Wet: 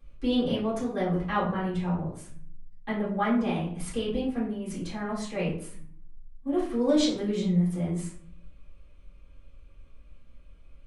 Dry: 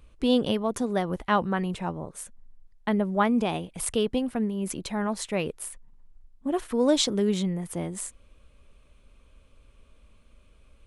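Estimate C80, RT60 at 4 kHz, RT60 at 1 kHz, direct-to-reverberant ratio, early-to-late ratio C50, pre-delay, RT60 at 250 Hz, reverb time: 9.5 dB, 0.35 s, 0.50 s, -10.0 dB, 5.0 dB, 3 ms, 0.90 s, 0.55 s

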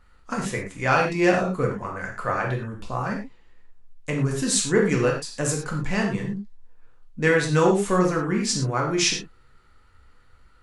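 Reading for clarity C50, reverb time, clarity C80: 5.0 dB, no single decay rate, 9.0 dB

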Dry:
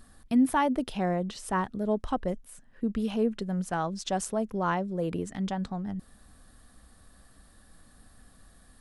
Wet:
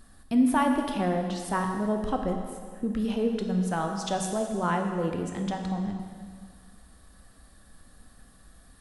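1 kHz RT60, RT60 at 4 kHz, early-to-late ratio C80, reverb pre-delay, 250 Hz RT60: 1.9 s, 1.8 s, 6.0 dB, 6 ms, 1.9 s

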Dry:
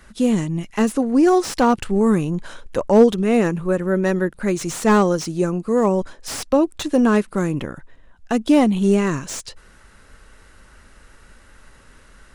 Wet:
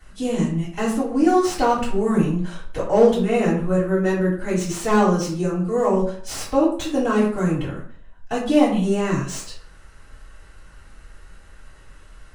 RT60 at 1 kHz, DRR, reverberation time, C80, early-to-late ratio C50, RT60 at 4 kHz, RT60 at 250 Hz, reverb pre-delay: 0.50 s, -9.5 dB, 0.50 s, 9.5 dB, 5.5 dB, 0.35 s, 0.50 s, 3 ms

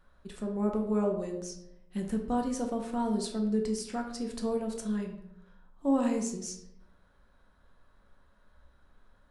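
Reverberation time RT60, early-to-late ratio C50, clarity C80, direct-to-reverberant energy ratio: 0.80 s, 7.0 dB, 9.5 dB, 1.5 dB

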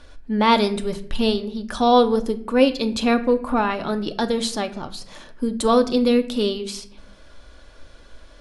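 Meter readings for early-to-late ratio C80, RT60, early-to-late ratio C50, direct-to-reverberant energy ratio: 18.0 dB, 0.65 s, 15.0 dB, 8.0 dB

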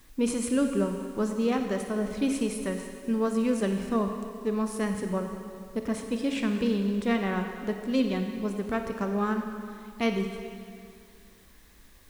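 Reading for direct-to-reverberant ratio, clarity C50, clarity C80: 5.0 dB, 5.5 dB, 6.5 dB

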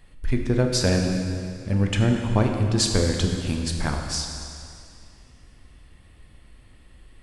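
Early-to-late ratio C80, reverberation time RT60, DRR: 5.0 dB, 2.4 s, 2.0 dB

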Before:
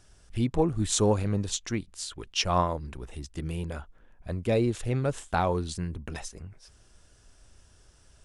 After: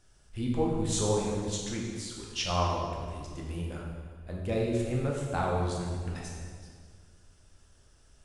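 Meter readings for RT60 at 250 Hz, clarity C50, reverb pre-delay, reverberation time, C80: 2.1 s, 1.0 dB, 12 ms, 1.8 s, 3.0 dB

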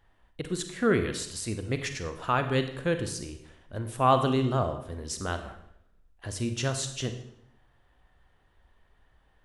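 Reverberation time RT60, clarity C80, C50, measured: 0.75 s, 12.0 dB, 9.5 dB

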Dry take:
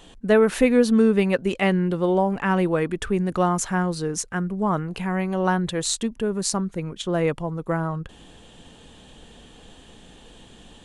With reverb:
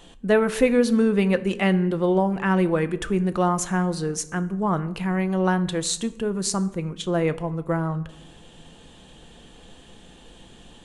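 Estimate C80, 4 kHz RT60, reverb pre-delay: 19.5 dB, 0.55 s, 6 ms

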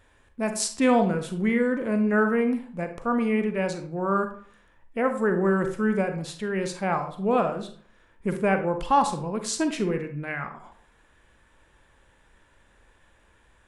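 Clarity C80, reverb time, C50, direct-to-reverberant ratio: 13.5 dB, 0.50 s, 9.5 dB, 6.5 dB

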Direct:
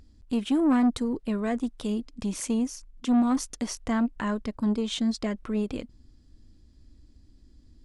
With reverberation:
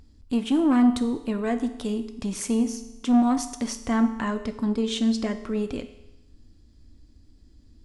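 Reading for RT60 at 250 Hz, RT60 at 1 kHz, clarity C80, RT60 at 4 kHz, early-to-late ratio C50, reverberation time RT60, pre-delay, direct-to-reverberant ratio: 0.95 s, 0.95 s, 13.5 dB, 0.95 s, 11.5 dB, 0.95 s, 4 ms, 8.0 dB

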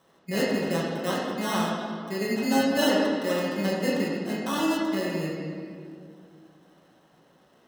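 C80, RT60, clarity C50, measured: 1.5 dB, 2.2 s, 0.0 dB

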